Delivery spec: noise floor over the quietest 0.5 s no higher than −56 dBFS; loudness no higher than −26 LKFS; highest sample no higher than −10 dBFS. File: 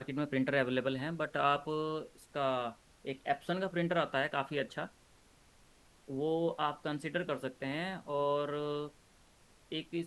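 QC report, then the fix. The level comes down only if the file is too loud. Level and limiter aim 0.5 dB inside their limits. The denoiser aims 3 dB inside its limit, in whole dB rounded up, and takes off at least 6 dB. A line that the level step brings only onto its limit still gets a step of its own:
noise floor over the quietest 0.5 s −64 dBFS: in spec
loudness −35.5 LKFS: in spec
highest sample −16.5 dBFS: in spec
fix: no processing needed

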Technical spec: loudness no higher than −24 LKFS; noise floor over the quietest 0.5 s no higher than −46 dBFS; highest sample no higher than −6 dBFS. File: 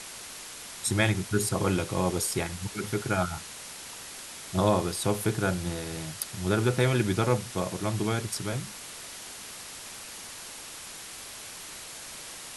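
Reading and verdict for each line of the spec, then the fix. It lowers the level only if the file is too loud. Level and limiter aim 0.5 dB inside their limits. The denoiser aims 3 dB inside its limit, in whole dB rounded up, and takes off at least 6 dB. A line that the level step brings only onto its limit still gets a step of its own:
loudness −30.5 LKFS: in spec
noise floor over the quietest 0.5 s −43 dBFS: out of spec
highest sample −9.5 dBFS: in spec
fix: broadband denoise 6 dB, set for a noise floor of −43 dBFS

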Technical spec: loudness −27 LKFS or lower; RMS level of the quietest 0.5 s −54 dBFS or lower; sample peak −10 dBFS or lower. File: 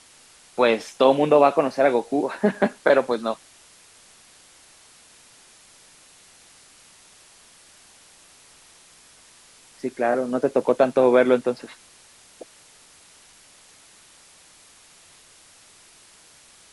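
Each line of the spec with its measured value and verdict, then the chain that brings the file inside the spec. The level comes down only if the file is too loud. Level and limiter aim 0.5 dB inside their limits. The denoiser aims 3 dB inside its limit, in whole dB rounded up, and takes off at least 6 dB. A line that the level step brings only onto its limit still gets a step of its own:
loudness −20.5 LKFS: out of spec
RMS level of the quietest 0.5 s −52 dBFS: out of spec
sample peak −3.5 dBFS: out of spec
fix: level −7 dB

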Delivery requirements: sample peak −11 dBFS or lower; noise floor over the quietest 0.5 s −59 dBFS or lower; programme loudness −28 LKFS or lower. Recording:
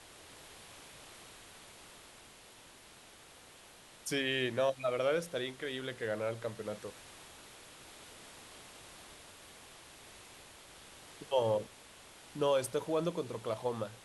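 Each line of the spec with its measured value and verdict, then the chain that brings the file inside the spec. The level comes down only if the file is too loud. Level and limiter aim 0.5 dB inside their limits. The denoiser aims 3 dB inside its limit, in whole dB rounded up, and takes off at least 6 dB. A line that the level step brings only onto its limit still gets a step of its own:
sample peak −19.0 dBFS: in spec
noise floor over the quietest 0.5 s −57 dBFS: out of spec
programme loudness −35.0 LKFS: in spec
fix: broadband denoise 6 dB, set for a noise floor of −57 dBFS

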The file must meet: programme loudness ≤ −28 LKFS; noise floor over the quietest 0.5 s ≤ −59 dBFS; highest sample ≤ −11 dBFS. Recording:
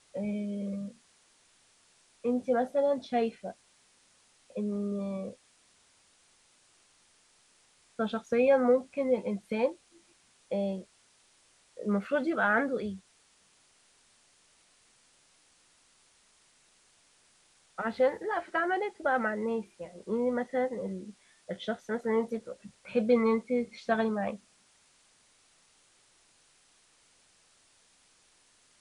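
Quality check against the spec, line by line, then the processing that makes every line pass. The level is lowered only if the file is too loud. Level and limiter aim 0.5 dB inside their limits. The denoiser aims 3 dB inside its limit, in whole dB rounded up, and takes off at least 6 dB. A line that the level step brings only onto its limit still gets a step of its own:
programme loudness −31.0 LKFS: in spec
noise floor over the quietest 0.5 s −65 dBFS: in spec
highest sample −13.0 dBFS: in spec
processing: no processing needed

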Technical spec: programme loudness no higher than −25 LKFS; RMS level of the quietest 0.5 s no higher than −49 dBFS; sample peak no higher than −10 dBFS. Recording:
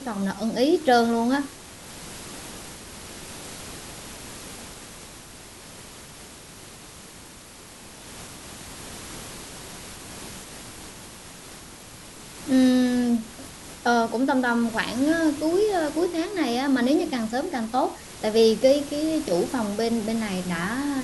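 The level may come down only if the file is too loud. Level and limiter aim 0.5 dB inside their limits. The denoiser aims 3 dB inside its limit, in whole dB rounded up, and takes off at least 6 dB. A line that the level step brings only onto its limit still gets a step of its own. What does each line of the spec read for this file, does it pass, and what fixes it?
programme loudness −23.5 LKFS: out of spec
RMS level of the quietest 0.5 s −45 dBFS: out of spec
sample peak −7.0 dBFS: out of spec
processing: broadband denoise 6 dB, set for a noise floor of −45 dBFS
level −2 dB
brickwall limiter −10.5 dBFS

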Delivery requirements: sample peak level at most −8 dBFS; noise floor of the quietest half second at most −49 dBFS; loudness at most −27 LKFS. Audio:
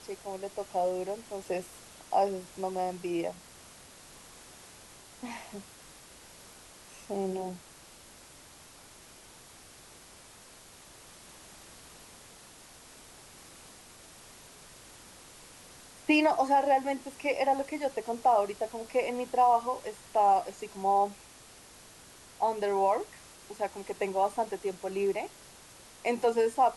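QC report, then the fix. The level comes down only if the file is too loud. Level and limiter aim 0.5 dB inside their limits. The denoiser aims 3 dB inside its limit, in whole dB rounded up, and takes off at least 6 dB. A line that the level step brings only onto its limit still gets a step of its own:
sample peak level −13.5 dBFS: in spec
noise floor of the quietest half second −53 dBFS: in spec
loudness −30.5 LKFS: in spec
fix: no processing needed

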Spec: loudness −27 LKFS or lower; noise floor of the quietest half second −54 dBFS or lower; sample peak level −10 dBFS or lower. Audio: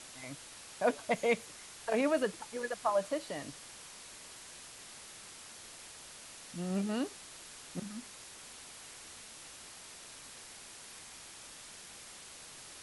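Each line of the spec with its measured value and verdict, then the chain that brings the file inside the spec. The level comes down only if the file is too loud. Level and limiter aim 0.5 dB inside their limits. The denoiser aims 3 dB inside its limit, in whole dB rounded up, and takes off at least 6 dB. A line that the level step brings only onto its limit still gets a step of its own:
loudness −39.0 LKFS: in spec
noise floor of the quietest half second −51 dBFS: out of spec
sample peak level −17.5 dBFS: in spec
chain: broadband denoise 6 dB, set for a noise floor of −51 dBFS

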